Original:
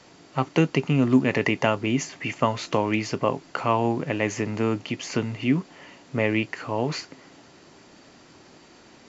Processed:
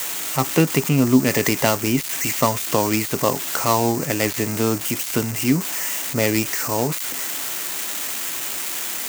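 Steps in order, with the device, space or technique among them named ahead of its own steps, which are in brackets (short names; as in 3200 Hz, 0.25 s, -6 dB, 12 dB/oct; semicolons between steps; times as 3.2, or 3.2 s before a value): budget class-D amplifier (switching dead time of 0.14 ms; switching spikes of -13.5 dBFS); gain +3.5 dB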